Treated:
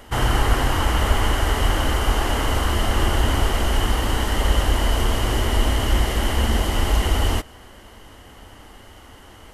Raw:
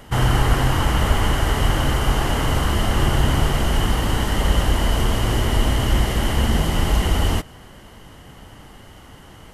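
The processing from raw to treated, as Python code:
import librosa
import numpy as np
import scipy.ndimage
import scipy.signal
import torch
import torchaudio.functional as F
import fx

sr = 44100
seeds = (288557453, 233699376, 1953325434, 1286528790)

y = fx.peak_eq(x, sr, hz=150.0, db=-14.0, octaves=0.57)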